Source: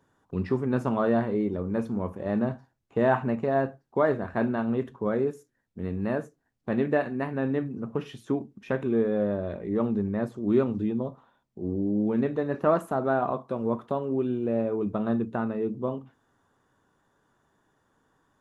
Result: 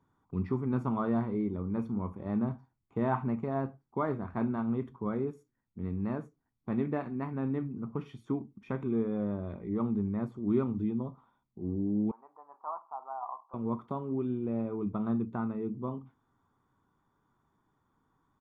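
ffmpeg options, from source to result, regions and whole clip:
-filter_complex "[0:a]asettb=1/sr,asplit=3[a][b][c];[a]atrim=end=12.114[d];[b]atrim=start=12.11:end=13.54,asetpts=PTS-STARTPTS,afade=t=in:d=0.004:c=qsin,afade=t=out:st=1.426:d=0.004:c=qsin,asuperpass=centerf=900:order=4:qfactor=2.7,acompressor=mode=upward:threshold=-54dB:ratio=2.5:attack=3.2:release=140:knee=2.83:detection=peak[e];[c]atrim=start=13.536[f];[d][e]acrossfade=d=0.004:c1=hsin:c2=qsin[g];[g][f]acrossfade=d=0.004:c1=qsin:c2=hsin,highshelf=f=2.7k:g=-12,aecho=1:1:0.9:0.55,volume=-5.5dB"

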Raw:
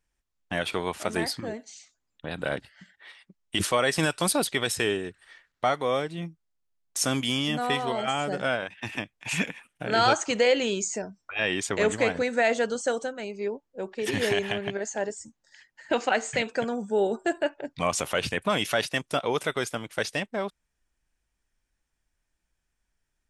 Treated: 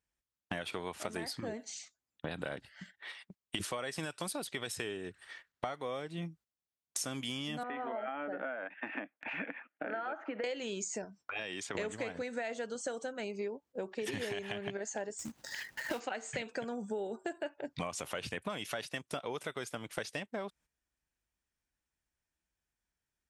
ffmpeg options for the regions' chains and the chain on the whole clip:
-filter_complex "[0:a]asettb=1/sr,asplit=3[a][b][c];[a]atrim=end=7.634[d];[b]atrim=start=7.63:end=10.44,asetpts=PTS-STARTPTS,afade=t=in:d=0.004:c=qsin,afade=t=out:st=2.806:d=0.004:c=qsin,bandreject=f=720:w=7.4,acompressor=threshold=-33dB:ratio=2:attack=3.2:release=140:knee=1:detection=peak,highpass=f=260:w=0.5412,highpass=f=260:w=1.3066,equalizer=f=280:t=q:w=4:g=5,equalizer=f=400:t=q:w=4:g=-8,equalizer=f=700:t=q:w=4:g=8,equalizer=f=1k:t=q:w=4:g=-5,equalizer=f=1.5k:t=q:w=4:g=3,lowpass=f=2.1k:w=0.5412,lowpass=f=2.1k:w=1.3066[e];[c]atrim=start=10.436[f];[d][e]acrossfade=d=0.004:c1=hsin:c2=qsin[g];[g][f]acrossfade=d=0.004:c1=qsin:c2=hsin,asettb=1/sr,asplit=3[h][i][j];[h]atrim=end=11.044[k];[i]atrim=start=11.04:end=11.75,asetpts=PTS-STARTPTS,afade=t=in:d=0.004:c=qsin,afade=t=out:st=0.706:d=0.004:c=qsin,highpass=f=130:p=1,acrossover=split=930|4600[l][m][n];[l]acompressor=threshold=-43dB:ratio=4[o];[m]acompressor=threshold=-41dB:ratio=4[p];[n]acompressor=threshold=-44dB:ratio=4[q];[o][p][q]amix=inputs=3:normalize=0,highshelf=f=8.2k:g=-7[r];[j]atrim=start=11.746[s];[k][r]acrossfade=d=0.004:c1=hsin:c2=qsin[t];[t][s]acrossfade=d=0.004:c1=qsin:c2=hsin,asettb=1/sr,asplit=3[u][v][w];[u]atrim=end=15.194[x];[v]atrim=start=15.19:end=16,asetpts=PTS-STARTPTS,afade=t=in:d=0.004:c=qsin,afade=t=out:st=0.806:d=0.004:c=qsin,acrusher=bits=2:mode=log:mix=0:aa=0.000001,acompressor=mode=upward:threshold=-30dB:ratio=2.5:attack=3.2:release=140:knee=2.83:detection=peak,highshelf=f=4.1k:g=-2.5[y];[w]atrim=start=15.996[z];[x][y]acrossfade=d=0.004:c1=hsin:c2=qsin[aa];[aa][z]acrossfade=d=0.004:c1=qsin:c2=hsin,highpass=55,agate=range=-10dB:threshold=-54dB:ratio=16:detection=peak,acompressor=threshold=-37dB:ratio=10,volume=2dB"

